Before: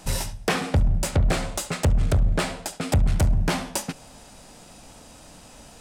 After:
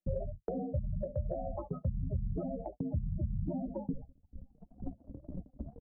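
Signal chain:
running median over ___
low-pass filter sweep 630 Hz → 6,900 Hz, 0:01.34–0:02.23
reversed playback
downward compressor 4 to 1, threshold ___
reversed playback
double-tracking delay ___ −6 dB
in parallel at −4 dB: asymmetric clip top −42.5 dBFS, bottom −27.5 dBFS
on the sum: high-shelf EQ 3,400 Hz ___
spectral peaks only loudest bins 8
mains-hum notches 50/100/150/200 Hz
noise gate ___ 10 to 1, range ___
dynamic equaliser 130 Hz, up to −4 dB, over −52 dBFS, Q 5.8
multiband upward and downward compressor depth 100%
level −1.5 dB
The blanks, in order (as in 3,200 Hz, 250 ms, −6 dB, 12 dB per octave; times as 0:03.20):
25 samples, −34 dBFS, 15 ms, +7.5 dB, −41 dBFS, −55 dB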